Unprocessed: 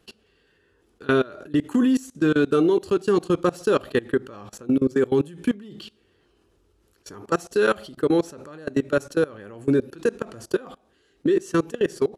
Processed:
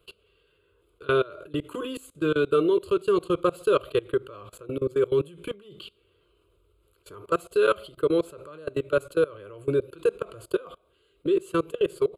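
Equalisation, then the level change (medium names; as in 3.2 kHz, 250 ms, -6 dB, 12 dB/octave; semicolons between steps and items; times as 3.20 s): static phaser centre 1.2 kHz, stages 8; 0.0 dB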